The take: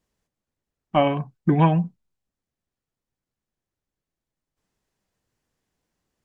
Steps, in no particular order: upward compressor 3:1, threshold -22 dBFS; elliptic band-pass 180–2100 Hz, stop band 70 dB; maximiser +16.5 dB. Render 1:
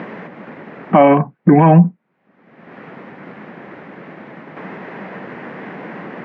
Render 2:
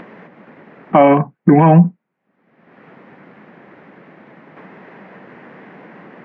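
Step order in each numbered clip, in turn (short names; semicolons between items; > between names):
upward compressor > elliptic band-pass > maximiser; elliptic band-pass > maximiser > upward compressor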